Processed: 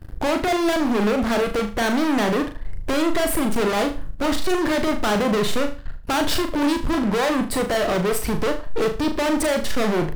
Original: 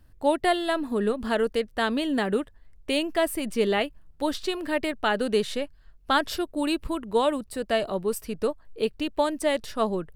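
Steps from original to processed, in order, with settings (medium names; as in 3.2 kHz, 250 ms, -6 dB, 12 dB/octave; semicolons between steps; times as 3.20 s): treble shelf 2.3 kHz -9.5 dB; in parallel at 0 dB: peak limiter -18 dBFS, peak gain reduction 6.5 dB; on the sum: waveshaping leveller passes 3; compression, threshold -18 dBFS, peak gain reduction 7 dB; hard clipper -25.5 dBFS, distortion -9 dB; flutter echo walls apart 6.6 m, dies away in 0.34 s; trim +5.5 dB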